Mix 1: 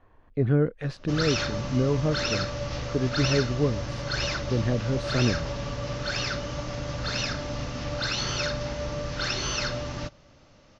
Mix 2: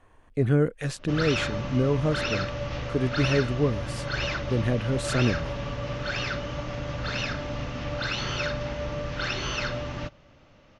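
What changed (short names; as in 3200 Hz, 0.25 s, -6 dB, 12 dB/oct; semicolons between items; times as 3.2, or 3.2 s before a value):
speech: remove air absorption 310 m; master: add resonant high shelf 3800 Hz -6 dB, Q 1.5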